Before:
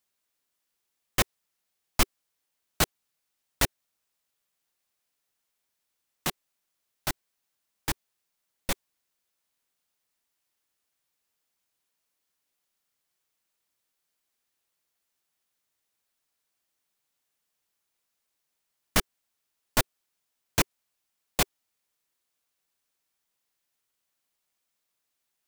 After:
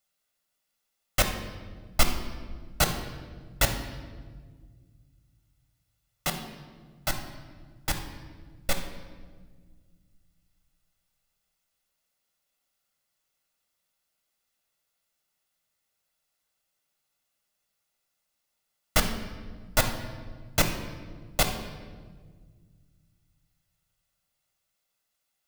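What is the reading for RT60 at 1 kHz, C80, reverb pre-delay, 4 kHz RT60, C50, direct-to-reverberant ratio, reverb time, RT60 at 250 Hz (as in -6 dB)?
1.4 s, 9.5 dB, 3 ms, 1.1 s, 7.0 dB, 4.0 dB, 1.6 s, 2.5 s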